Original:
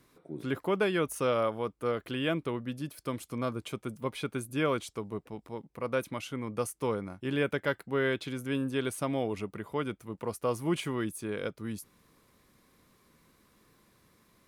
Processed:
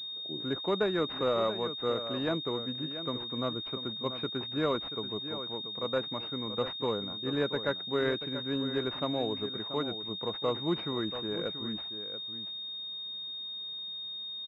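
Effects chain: high-pass 150 Hz 6 dB/octave; on a send: delay 683 ms -11 dB; on the sum: class-D stage that switches slowly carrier 3.7 kHz

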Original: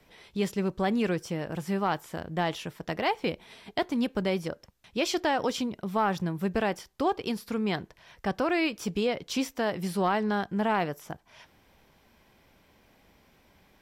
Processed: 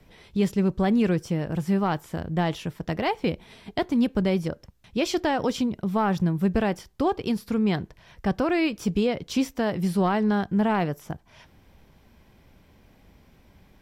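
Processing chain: bass shelf 260 Hz +11.5 dB

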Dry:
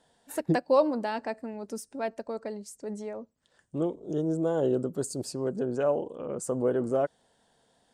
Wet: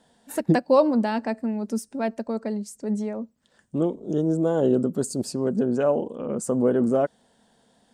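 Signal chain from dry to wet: peaking EQ 220 Hz +9.5 dB 0.47 oct; trim +4 dB

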